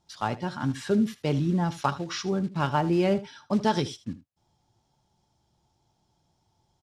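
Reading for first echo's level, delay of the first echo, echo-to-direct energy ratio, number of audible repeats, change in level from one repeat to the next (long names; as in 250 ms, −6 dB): −16.5 dB, 78 ms, −16.5 dB, 1, repeats not evenly spaced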